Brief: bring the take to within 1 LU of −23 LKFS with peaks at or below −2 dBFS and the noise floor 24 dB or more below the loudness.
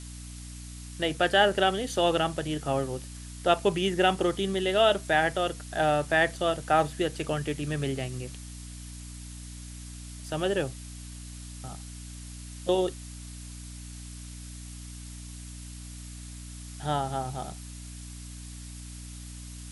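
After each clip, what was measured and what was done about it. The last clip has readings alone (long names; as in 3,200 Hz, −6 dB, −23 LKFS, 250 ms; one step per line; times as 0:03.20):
mains hum 60 Hz; hum harmonics up to 300 Hz; level of the hum −40 dBFS; background noise floor −42 dBFS; target noise floor −52 dBFS; integrated loudness −27.5 LKFS; sample peak −9.5 dBFS; target loudness −23.0 LKFS
→ hum removal 60 Hz, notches 5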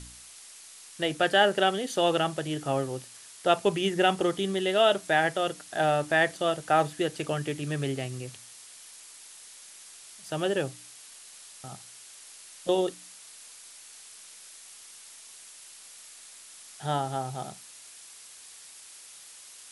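mains hum none found; background noise floor −49 dBFS; target noise floor −52 dBFS
→ broadband denoise 6 dB, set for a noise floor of −49 dBFS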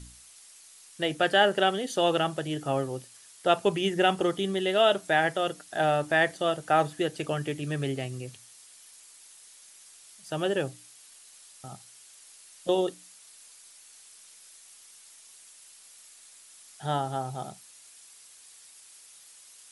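background noise floor −53 dBFS; integrated loudness −27.5 LKFS; sample peak −9.0 dBFS; target loudness −23.0 LKFS
→ level +4.5 dB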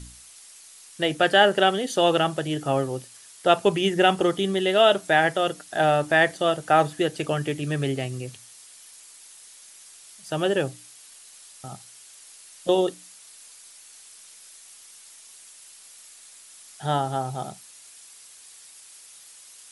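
integrated loudness −23.0 LKFS; sample peak −4.5 dBFS; background noise floor −49 dBFS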